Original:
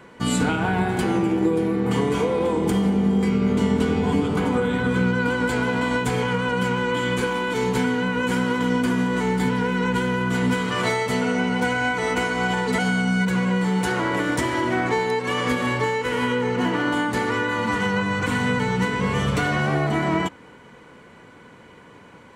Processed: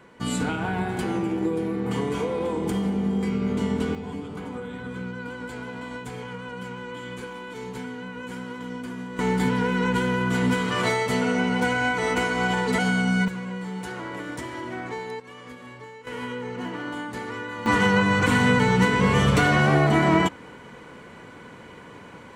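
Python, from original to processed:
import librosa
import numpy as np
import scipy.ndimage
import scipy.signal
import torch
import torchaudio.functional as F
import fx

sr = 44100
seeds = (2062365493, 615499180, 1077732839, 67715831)

y = fx.gain(x, sr, db=fx.steps((0.0, -5.0), (3.95, -13.0), (9.19, -1.0), (13.28, -11.0), (15.2, -19.5), (16.07, -10.0), (17.66, 3.0)))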